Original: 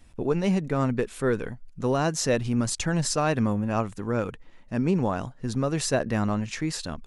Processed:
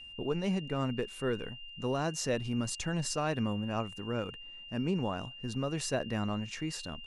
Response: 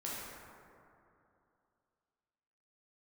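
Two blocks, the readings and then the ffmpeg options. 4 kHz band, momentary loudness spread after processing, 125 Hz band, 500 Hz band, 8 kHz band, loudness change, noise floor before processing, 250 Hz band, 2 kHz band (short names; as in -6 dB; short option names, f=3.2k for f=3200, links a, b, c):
-3.5 dB, 6 LU, -8.0 dB, -8.0 dB, -8.0 dB, -8.0 dB, -50 dBFS, -8.0 dB, -6.0 dB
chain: -af "aeval=exprs='val(0)+0.0126*sin(2*PI*2800*n/s)':c=same,volume=-8dB"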